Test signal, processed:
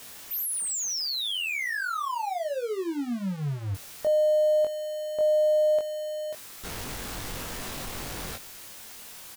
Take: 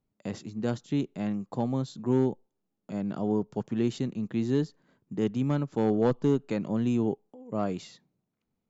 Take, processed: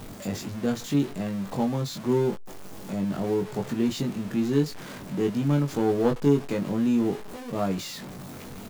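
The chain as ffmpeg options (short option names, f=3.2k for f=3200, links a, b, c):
-filter_complex "[0:a]aeval=exprs='val(0)+0.5*0.0178*sgn(val(0))':c=same,asplit=2[a][b];[b]adelay=21,volume=-4dB[c];[a][c]amix=inputs=2:normalize=0"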